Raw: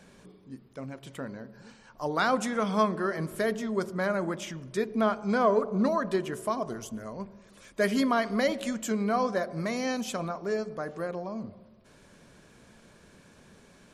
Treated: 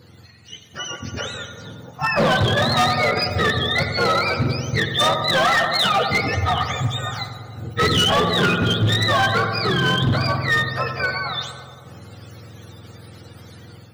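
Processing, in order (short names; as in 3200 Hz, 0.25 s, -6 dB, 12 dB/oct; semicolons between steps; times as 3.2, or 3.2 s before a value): spectrum mirrored in octaves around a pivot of 890 Hz; on a send: darkening echo 92 ms, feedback 84%, low-pass 1800 Hz, level -9.5 dB; on the sum: overloaded stage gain 27.5 dB; AGC gain up to 7 dB; gain +6.5 dB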